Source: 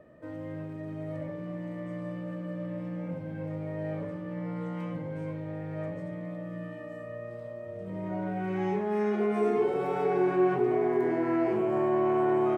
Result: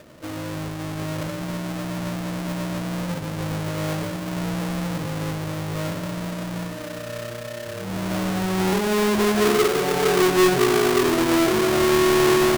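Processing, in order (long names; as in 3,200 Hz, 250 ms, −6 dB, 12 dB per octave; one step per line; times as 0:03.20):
each half-wave held at its own peak
level +4 dB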